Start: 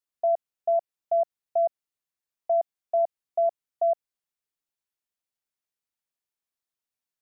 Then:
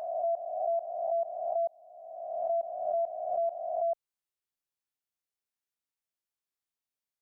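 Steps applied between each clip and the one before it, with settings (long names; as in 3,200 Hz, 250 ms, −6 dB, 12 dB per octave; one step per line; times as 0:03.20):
peak hold with a rise ahead of every peak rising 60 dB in 1.56 s
noise reduction from a noise print of the clip's start 7 dB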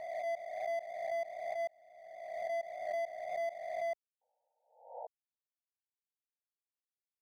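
running median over 41 samples
sound drawn into the spectrogram noise, 0:04.21–0:05.07, 460–940 Hz −40 dBFS
level that may rise only so fast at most 100 dB per second
level −3 dB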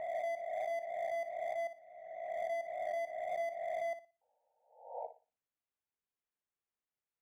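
adaptive Wiener filter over 9 samples
downward compressor, threshold −39 dBFS, peak gain reduction 5.5 dB
on a send: flutter between parallel walls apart 10.1 metres, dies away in 0.3 s
on the sum: level +3.5 dB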